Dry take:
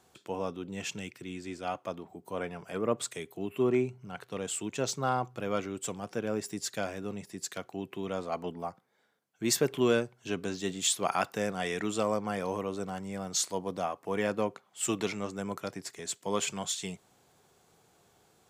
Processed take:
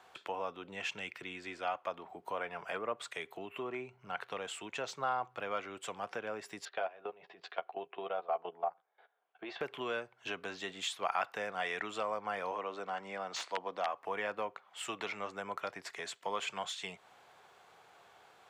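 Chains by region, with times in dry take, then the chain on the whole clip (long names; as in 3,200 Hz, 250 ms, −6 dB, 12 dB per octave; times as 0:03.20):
0:06.65–0:09.61: output level in coarse steps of 18 dB + loudspeaker in its box 190–3,600 Hz, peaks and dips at 240 Hz −9 dB, 400 Hz +6 dB, 720 Hz +9 dB, 2,000 Hz −5 dB + double-tracking delay 12 ms −8 dB
0:12.51–0:13.88: wrap-around overflow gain 20 dB + three-way crossover with the lows and the highs turned down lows −14 dB, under 170 Hz, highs −16 dB, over 7,900 Hz
whole clip: downward compressor 2.5 to 1, threshold −42 dBFS; three-way crossover with the lows and the highs turned down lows −18 dB, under 580 Hz, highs −17 dB, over 3,500 Hz; level +9.5 dB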